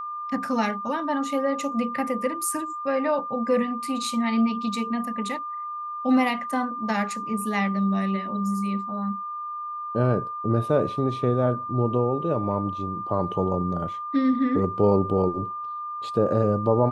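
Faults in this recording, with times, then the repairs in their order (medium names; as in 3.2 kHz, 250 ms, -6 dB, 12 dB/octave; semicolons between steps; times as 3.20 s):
whine 1.2 kHz -30 dBFS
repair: band-stop 1.2 kHz, Q 30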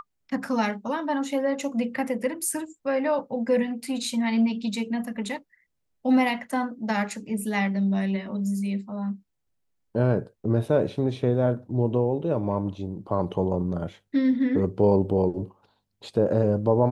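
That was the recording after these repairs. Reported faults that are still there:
nothing left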